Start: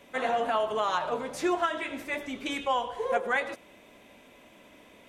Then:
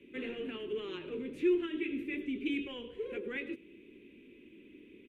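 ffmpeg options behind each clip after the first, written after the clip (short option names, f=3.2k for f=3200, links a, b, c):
-filter_complex "[0:a]acrossover=split=100|590|2000[a][b][c][d];[b]volume=35.5dB,asoftclip=hard,volume=-35.5dB[e];[a][e][c][d]amix=inputs=4:normalize=0,firequalizer=gain_entry='entry(150,0);entry(370,13);entry(660,-29);entry(2500,2);entry(5000,-23);entry(11000,-17)':delay=0.05:min_phase=1,volume=-4dB"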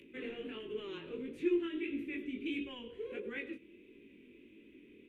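-af "acompressor=mode=upward:threshold=-52dB:ratio=2.5,flanger=delay=17.5:depth=6.6:speed=1.5"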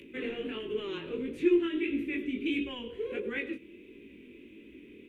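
-af "equalizer=f=66:t=o:w=0.22:g=9,volume=7dB"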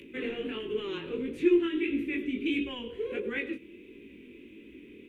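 -af "bandreject=f=620:w=12,volume=1.5dB"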